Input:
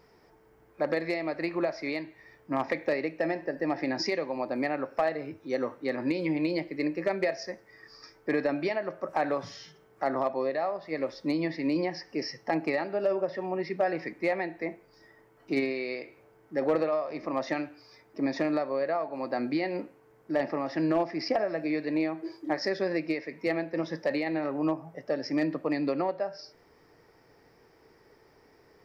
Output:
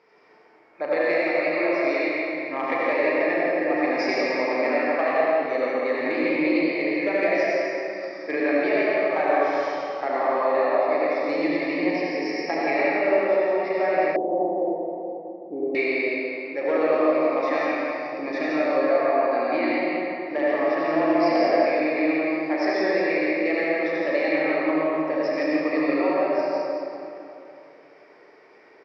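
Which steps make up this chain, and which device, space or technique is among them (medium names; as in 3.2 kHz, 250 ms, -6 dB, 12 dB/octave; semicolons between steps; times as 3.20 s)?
station announcement (band-pass 340–4100 Hz; peaking EQ 2.3 kHz +6.5 dB 0.34 oct; loudspeakers at several distances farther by 12 m -8 dB, 58 m -6 dB; reverberation RT60 2.9 s, pre-delay 68 ms, DRR -6 dB); 14.16–15.75 s: elliptic low-pass 840 Hz, stop band 80 dB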